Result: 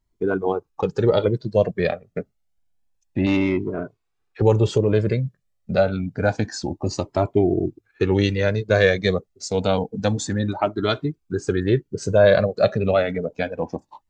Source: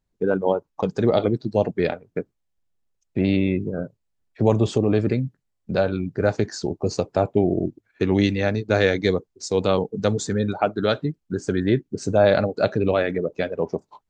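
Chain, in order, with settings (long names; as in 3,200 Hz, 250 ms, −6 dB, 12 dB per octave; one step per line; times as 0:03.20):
0:03.26–0:04.42: mid-hump overdrive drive 15 dB, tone 2,000 Hz, clips at −9.5 dBFS
flanger whose copies keep moving one way rising 0.28 Hz
level +5.5 dB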